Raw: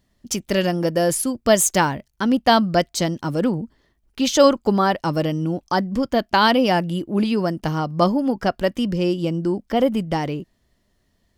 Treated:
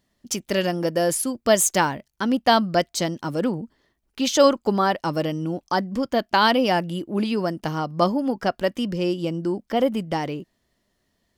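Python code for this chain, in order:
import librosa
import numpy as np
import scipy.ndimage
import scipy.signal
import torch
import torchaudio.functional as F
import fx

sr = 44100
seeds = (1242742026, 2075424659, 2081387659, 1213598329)

y = fx.low_shelf(x, sr, hz=120.0, db=-10.0)
y = F.gain(torch.from_numpy(y), -1.5).numpy()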